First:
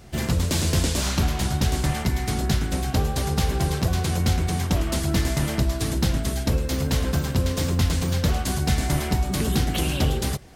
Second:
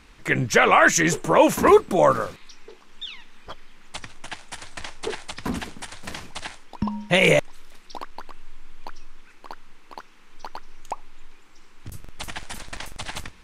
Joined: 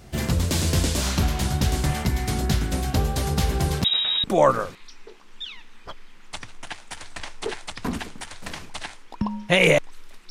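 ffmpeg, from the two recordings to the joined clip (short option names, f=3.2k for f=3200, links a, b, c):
-filter_complex "[0:a]asettb=1/sr,asplit=3[a][b][c];[a]atrim=end=3.844[d];[b]atrim=start=3.84:end=4.24,asetpts=PTS-STARTPTS,afade=t=in:d=0.004:c=qsin,afade=t=out:st=0.396:d=0.004:c=qsin,lowpass=f=3.3k:t=q:w=0.5098,lowpass=f=3.3k:t=q:w=0.6013,lowpass=f=3.3k:t=q:w=0.9,lowpass=f=3.3k:t=q:w=2.563,afreqshift=-3900[e];[c]atrim=start=4.236[f];[d][e]acrossfade=d=0.004:c1=hsin:c2=qsin[g];[g][f]acrossfade=d=0.004:c1=qsin:c2=hsin,apad=whole_dur=10.3,atrim=end=10.3,atrim=end=4.242[h];[1:a]atrim=start=1.848:end=7.91[i];[h][i]acrossfade=d=0.004:c1=hsin:c2=hsin"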